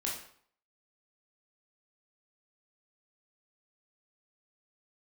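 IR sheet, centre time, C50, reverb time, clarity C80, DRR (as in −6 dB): 39 ms, 4.0 dB, 0.60 s, 8.5 dB, −4.0 dB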